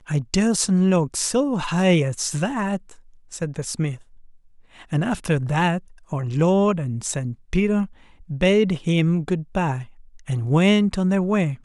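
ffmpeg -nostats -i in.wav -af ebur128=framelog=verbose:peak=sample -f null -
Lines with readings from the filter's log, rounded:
Integrated loudness:
  I:         -21.7 LUFS
  Threshold: -32.3 LUFS
Loudness range:
  LRA:         5.1 LU
  Threshold: -43.0 LUFS
  LRA low:   -26.2 LUFS
  LRA high:  -21.2 LUFS
Sample peak:
  Peak:       -6.4 dBFS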